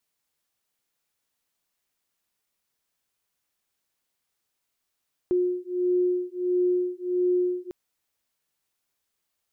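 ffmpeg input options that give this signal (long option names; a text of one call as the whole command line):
ffmpeg -f lavfi -i "aevalsrc='0.0562*(sin(2*PI*359*t)+sin(2*PI*360.5*t))':duration=2.4:sample_rate=44100" out.wav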